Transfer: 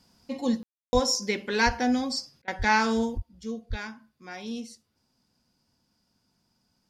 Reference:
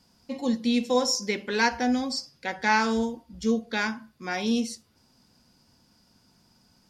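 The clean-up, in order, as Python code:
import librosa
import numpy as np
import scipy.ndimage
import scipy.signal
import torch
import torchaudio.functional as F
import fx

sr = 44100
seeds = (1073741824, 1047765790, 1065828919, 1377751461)

y = fx.fix_deplosive(x, sr, at_s=(0.93, 1.65, 2.58, 3.15, 3.69))
y = fx.fix_ambience(y, sr, seeds[0], print_start_s=4.81, print_end_s=5.31, start_s=0.63, end_s=0.93)
y = fx.fix_interpolate(y, sr, at_s=(2.42,), length_ms=56.0)
y = fx.fix_level(y, sr, at_s=3.18, step_db=10.0)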